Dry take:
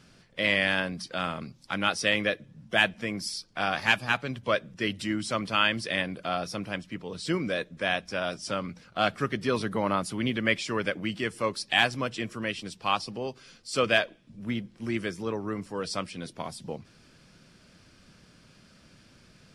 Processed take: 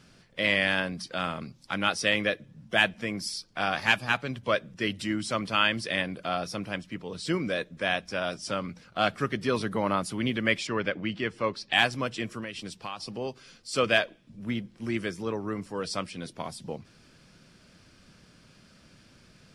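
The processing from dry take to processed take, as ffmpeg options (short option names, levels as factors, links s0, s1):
-filter_complex "[0:a]asettb=1/sr,asplit=3[s0][s1][s2];[s0]atrim=end=10.674[s3];[s1]atrim=start=10.67:end=11.73,asetpts=PTS-STARTPTS,afade=t=in:d=0.004:c=qsin,afade=t=out:st=1.056:d=0.004:c=qsin,lowpass=4200[s4];[s2]atrim=start=11.726[s5];[s3][s4]acrossfade=d=0.004:c1=hsin:c2=qsin[s6];[s6][s5]acrossfade=d=0.004:c1=qsin:c2=hsin,asettb=1/sr,asplit=3[s7][s8][s9];[s7]atrim=end=12.394[s10];[s8]atrim=start=12.39:end=13.11,asetpts=PTS-STARTPTS,afade=t=in:d=0.004:c=qsin,afade=t=out:st=0.716:d=0.004:c=qsin,acompressor=threshold=0.0251:ratio=6:attack=3.2:release=140:knee=1:detection=peak[s11];[s9]atrim=start=13.106[s12];[s10][s11]acrossfade=d=0.004:c1=hsin:c2=qsin[s13];[s13][s12]acrossfade=d=0.004:c1=qsin:c2=hsin"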